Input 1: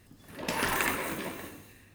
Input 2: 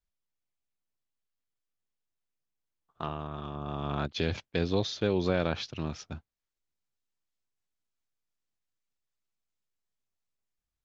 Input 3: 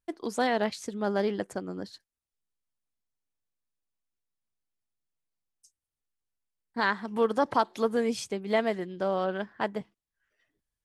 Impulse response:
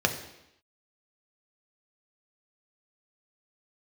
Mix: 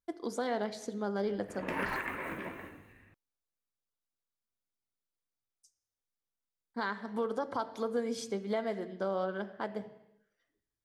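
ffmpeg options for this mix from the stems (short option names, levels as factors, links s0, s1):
-filter_complex "[0:a]highshelf=f=3100:t=q:w=1.5:g=-14,adelay=1200,volume=0.596[s0];[2:a]volume=0.447,asplit=2[s1][s2];[s2]volume=0.188[s3];[3:a]atrim=start_sample=2205[s4];[s3][s4]afir=irnorm=-1:irlink=0[s5];[s0][s1][s5]amix=inputs=3:normalize=0,alimiter=limit=0.075:level=0:latency=1:release=275"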